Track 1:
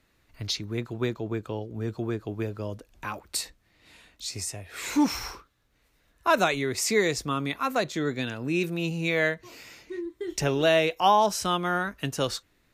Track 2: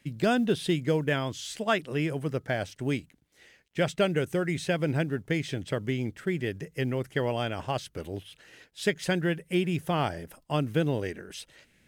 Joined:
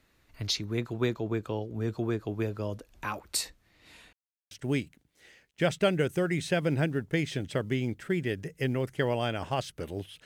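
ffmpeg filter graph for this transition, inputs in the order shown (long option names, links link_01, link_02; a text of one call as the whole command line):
ffmpeg -i cue0.wav -i cue1.wav -filter_complex "[0:a]apad=whole_dur=10.25,atrim=end=10.25,asplit=2[link_01][link_02];[link_01]atrim=end=4.13,asetpts=PTS-STARTPTS,afade=type=out:start_time=4.126:duration=0.004:curve=hsin[link_03];[link_02]atrim=start=4.13:end=4.51,asetpts=PTS-STARTPTS,volume=0[link_04];[1:a]atrim=start=2.68:end=8.42,asetpts=PTS-STARTPTS,afade=type=in:duration=0.004:curve=hsin[link_05];[link_03][link_04][link_05]concat=n=3:v=0:a=1" out.wav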